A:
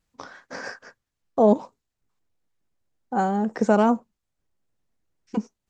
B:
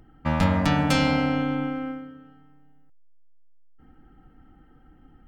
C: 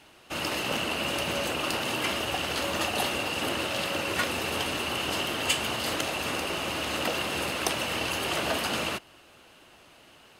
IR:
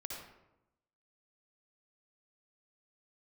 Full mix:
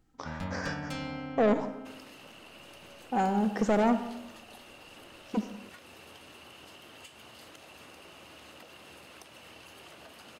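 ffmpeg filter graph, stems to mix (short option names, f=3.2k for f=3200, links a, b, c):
-filter_complex "[0:a]asoftclip=type=tanh:threshold=-17.5dB,volume=-4.5dB,asplit=2[a][b];[b]volume=-4dB[c];[1:a]volume=-16dB[d];[2:a]acompressor=threshold=-33dB:ratio=6,adelay=1550,volume=-15dB[e];[3:a]atrim=start_sample=2205[f];[c][f]afir=irnorm=-1:irlink=0[g];[a][d][e][g]amix=inputs=4:normalize=0"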